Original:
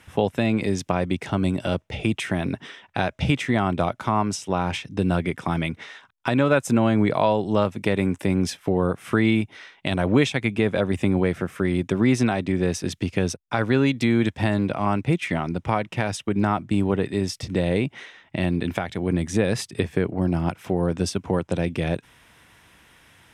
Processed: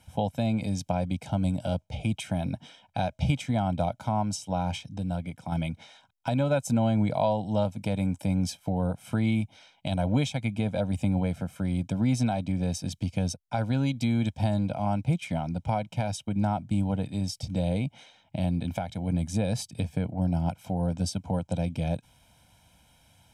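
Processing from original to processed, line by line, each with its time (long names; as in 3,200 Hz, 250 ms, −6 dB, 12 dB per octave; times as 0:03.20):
0:04.98–0:05.52: clip gain −5 dB
whole clip: parametric band 1,700 Hz −14 dB 1 octave; comb filter 1.3 ms, depth 88%; level −6 dB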